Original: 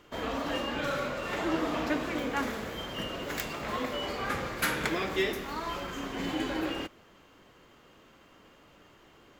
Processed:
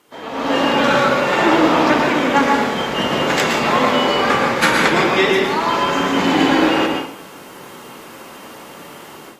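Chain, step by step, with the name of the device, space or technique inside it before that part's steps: filmed off a television (band-pass 170–7500 Hz; peaking EQ 870 Hz +6 dB 0.35 oct; reverberation RT60 0.65 s, pre-delay 108 ms, DRR 1 dB; white noise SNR 31 dB; level rider gain up to 16.5 dB; AAC 48 kbps 32 kHz)

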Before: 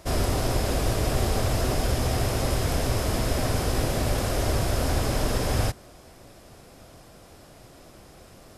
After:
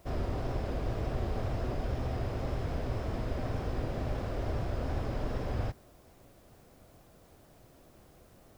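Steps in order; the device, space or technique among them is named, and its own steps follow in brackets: cassette deck with a dirty head (tape spacing loss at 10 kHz 26 dB; wow and flutter; white noise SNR 34 dB); trim -8 dB

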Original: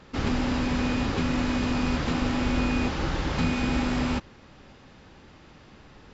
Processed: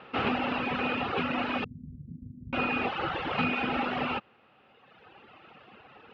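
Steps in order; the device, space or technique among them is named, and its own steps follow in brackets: reverb removal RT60 1.8 s; 1.64–2.53 s: inverse Chebyshev low-pass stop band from 770 Hz, stop band 70 dB; kitchen radio (cabinet simulation 160–3500 Hz, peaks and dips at 170 Hz -4 dB, 290 Hz -4 dB, 470 Hz +4 dB, 750 Hz +8 dB, 1.3 kHz +8 dB, 2.7 kHz +10 dB)

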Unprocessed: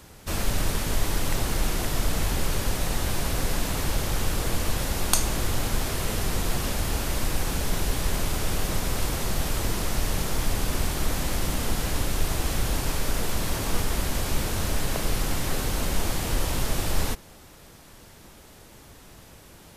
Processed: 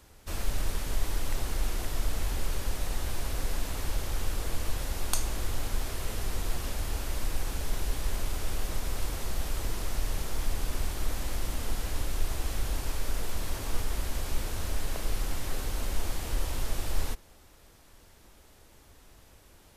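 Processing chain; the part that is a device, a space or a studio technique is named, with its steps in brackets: low shelf boost with a cut just above (bass shelf 67 Hz +7 dB; peaking EQ 160 Hz -6 dB 1 oct); trim -8.5 dB

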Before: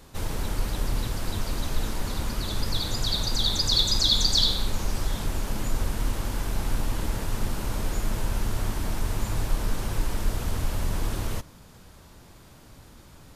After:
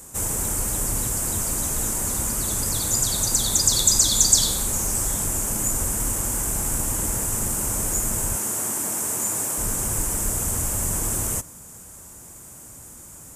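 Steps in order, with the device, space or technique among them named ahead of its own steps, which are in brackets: 8.35–9.58 s: high-pass 220 Hz 12 dB/octave; budget condenser microphone (high-pass 63 Hz 6 dB/octave; resonant high shelf 5.7 kHz +12 dB, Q 3); trim +2.5 dB

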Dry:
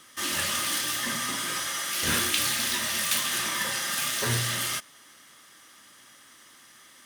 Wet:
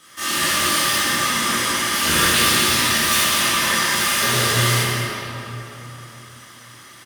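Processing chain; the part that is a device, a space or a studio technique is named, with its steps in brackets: cave (delay 205 ms -10 dB; reverberation RT60 3.5 s, pre-delay 10 ms, DRR -10.5 dB)

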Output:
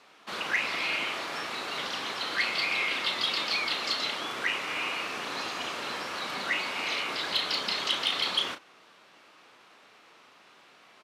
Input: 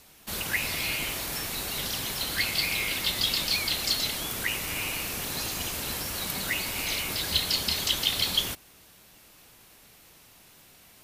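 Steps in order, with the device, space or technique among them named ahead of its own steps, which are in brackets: intercom (band-pass 320–3500 Hz; peaking EQ 1.2 kHz +6 dB 0.58 oct; saturation -17.5 dBFS, distortion -22 dB; doubling 35 ms -8.5 dB); trim +1.5 dB

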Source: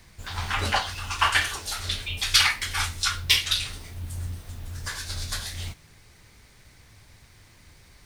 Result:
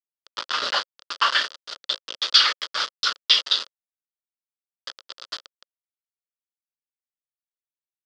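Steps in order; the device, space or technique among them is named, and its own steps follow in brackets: hand-held game console (bit crusher 4-bit; cabinet simulation 480–5000 Hz, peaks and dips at 540 Hz +5 dB, 790 Hz -9 dB, 1.3 kHz +6 dB, 2.3 kHz -9 dB, 3.3 kHz +6 dB, 4.8 kHz +8 dB)

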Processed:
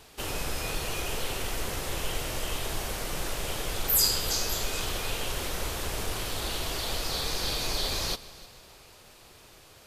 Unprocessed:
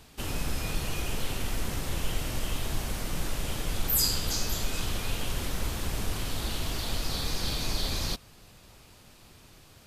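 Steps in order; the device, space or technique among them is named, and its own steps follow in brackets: multi-head tape echo (multi-head delay 153 ms, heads first and second, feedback 47%, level -22 dB; wow and flutter 14 cents); resonant low shelf 320 Hz -6 dB, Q 1.5; trim +2.5 dB

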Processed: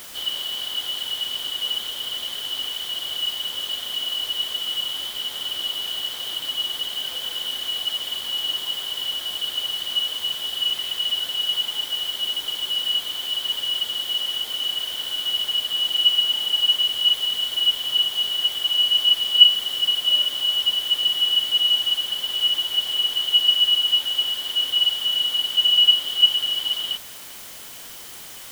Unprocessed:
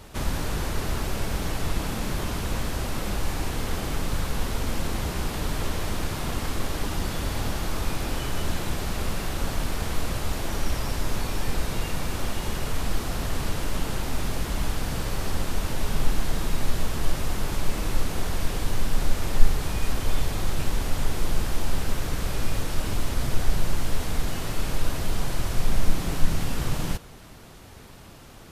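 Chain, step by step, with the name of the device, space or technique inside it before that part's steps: split-band scrambled radio (four frequency bands reordered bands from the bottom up 3412; band-pass 320–3400 Hz; white noise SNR 16 dB); trim -1 dB

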